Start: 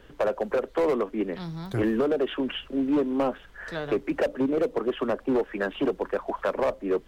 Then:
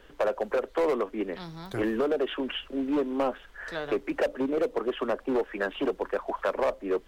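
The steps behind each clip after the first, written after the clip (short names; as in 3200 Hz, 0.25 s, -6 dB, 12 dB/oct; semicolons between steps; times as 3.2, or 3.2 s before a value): bell 120 Hz -9 dB 2.2 oct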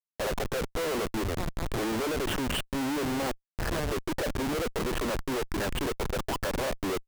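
Schmitt trigger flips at -35 dBFS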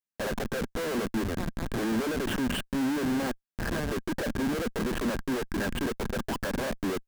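small resonant body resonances 220/1600 Hz, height 9 dB, ringing for 30 ms; gain -2.5 dB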